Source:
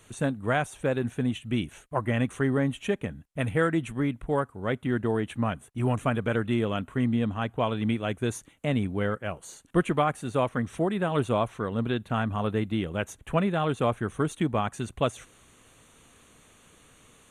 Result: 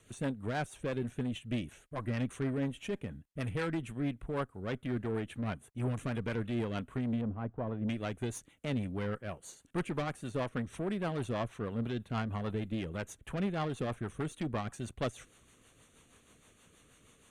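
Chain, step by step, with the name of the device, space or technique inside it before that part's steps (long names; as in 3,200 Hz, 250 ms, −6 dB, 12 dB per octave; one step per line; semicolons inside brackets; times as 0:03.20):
overdriven rotary cabinet (tube saturation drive 24 dB, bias 0.4; rotating-speaker cabinet horn 6.3 Hz)
0:07.21–0:07.88: low-pass filter 1,000 Hz 12 dB per octave
level −2.5 dB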